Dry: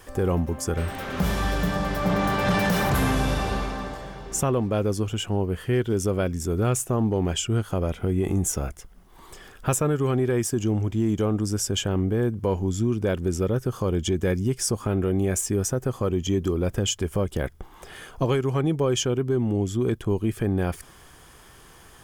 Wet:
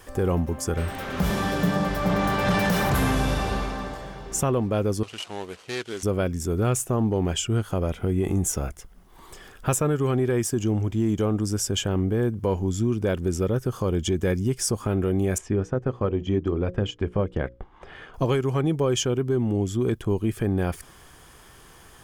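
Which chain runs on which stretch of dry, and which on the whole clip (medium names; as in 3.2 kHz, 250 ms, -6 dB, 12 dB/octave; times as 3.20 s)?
1.30–1.89 s: high-pass 140 Hz + bass shelf 430 Hz +6 dB
5.03–6.03 s: median filter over 25 samples + frequency weighting ITU-R 468 + tape noise reduction on one side only decoder only
15.38–18.14 s: low-pass 2.7 kHz + hum notches 60/120/180/240/300/360/420/480/540 Hz + transient shaper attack +2 dB, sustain -6 dB
whole clip: none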